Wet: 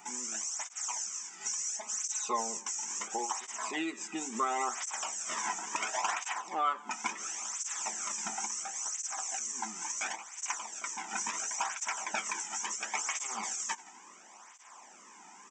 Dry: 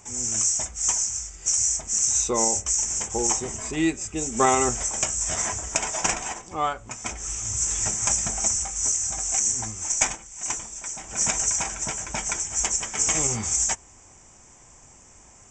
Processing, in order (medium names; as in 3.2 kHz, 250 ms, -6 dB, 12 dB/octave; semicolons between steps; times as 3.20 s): brick-wall FIR high-pass 180 Hz; feedback delay 85 ms, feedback 53%, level -23.5 dB; peak limiter -15 dBFS, peak gain reduction 9 dB; 1.40–2.57 s: comb 4.7 ms, depth 99%; compression 2.5:1, threshold -32 dBFS, peak gain reduction 9.5 dB; graphic EQ 250/500/1000/8000 Hz -7/-11/+6/-10 dB; cancelling through-zero flanger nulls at 0.72 Hz, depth 1.9 ms; trim +5.5 dB